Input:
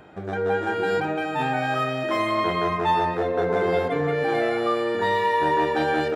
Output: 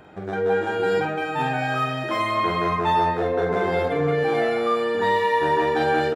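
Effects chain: doubling 47 ms -6 dB

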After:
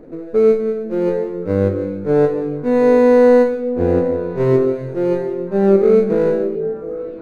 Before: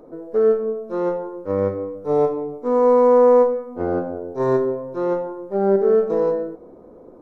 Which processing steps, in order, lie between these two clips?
median filter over 41 samples; bass shelf 450 Hz +11.5 dB; repeats whose band climbs or falls 360 ms, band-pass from 170 Hz, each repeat 1.4 oct, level -6.5 dB; trim -1 dB

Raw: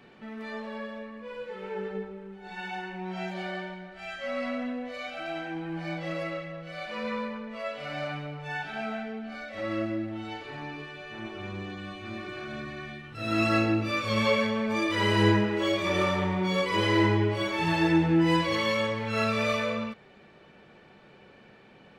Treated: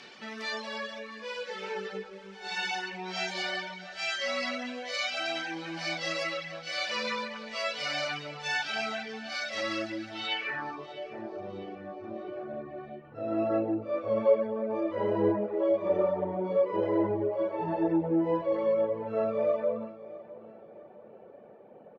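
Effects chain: low-pass sweep 5.5 kHz -> 590 Hz, 10.12–11.00 s; reverb removal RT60 0.7 s; in parallel at -0.5 dB: compression, threshold -38 dBFS, peak gain reduction 21 dB; on the sum: RIAA curve recording; feedback delay 655 ms, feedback 43%, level -18 dB; trim -1 dB

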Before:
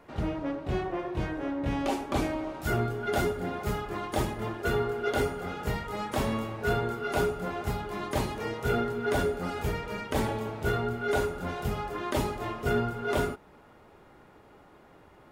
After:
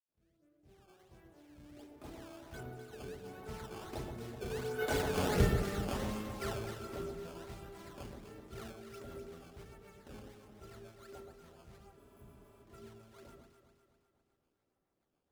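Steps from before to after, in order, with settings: fade-in on the opening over 2.53 s; Doppler pass-by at 5.35 s, 17 m/s, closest 2.2 m; in parallel at -2 dB: compression, threshold -45 dBFS, peak gain reduction 17 dB; on the sum: decimation with a swept rate 13×, swing 160% 1.4 Hz; rotary cabinet horn 0.75 Hz, later 7 Hz, at 8.38 s; on a send: echo whose repeats swap between lows and highs 126 ms, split 1 kHz, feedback 70%, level -5 dB; on the sum: spectral replace 11.99–12.58 s, 220–10000 Hz after; trim +4 dB

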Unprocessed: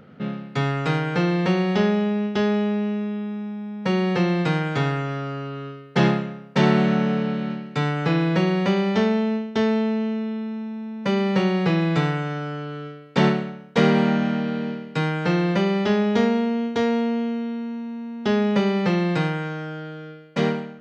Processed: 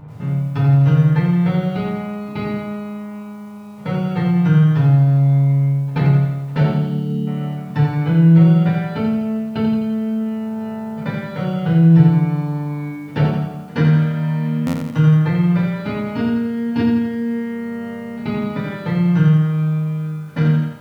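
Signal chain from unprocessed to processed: peaking EQ 130 Hz +11 dB 0.85 oct; compression 2.5:1, threshold -22 dBFS, peak gain reduction 9.5 dB; bass shelf 75 Hz +11 dB; pre-echo 81 ms -22.5 dB; FDN reverb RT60 0.54 s, low-frequency decay 1.1×, high-frequency decay 0.8×, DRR -5 dB; mains buzz 100 Hz, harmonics 15, -48 dBFS -3 dB/octave; formant shift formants -5 st; time-frequency box 6.74–7.27 s, 530–2800 Hz -19 dB; buffer glitch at 14.66 s, samples 512, times 6; bit-crushed delay 85 ms, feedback 55%, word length 8-bit, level -5.5 dB; trim -2.5 dB

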